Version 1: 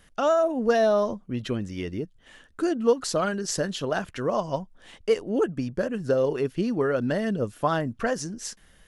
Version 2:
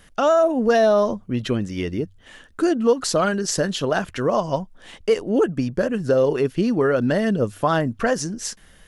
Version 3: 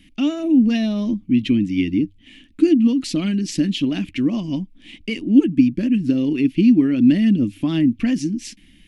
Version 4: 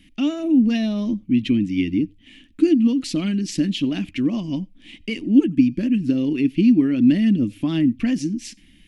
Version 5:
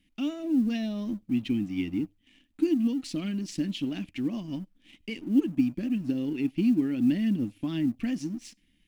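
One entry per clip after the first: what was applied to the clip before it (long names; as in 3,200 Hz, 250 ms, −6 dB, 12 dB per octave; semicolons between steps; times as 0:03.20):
hum removal 48.02 Hz, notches 2; in parallel at +3 dB: brickwall limiter −17 dBFS, peak gain reduction 7.5 dB; on the sum: level −1.5 dB
drawn EQ curve 140 Hz 0 dB, 300 Hz +14 dB, 440 Hz −16 dB, 1,500 Hz −17 dB, 2,300 Hz +8 dB, 6,400 Hz −7 dB; level −1 dB
convolution reverb, pre-delay 90 ms, DRR 28 dB; level −1.5 dB
mu-law and A-law mismatch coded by A; level −8.5 dB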